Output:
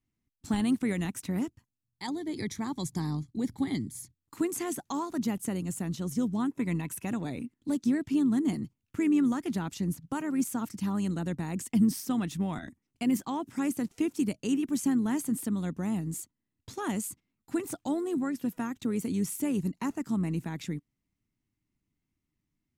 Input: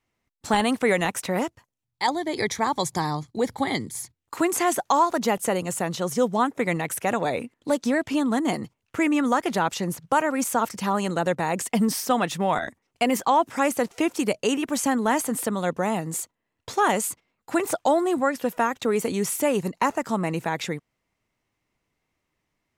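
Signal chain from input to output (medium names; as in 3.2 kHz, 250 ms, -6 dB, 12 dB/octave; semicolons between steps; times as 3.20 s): FFT filter 290 Hz 0 dB, 500 Hz -18 dB, 11 kHz -7 dB; AM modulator 100 Hz, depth 15%; 6.49–7.07 s: small resonant body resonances 1/2.6 kHz, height 11 dB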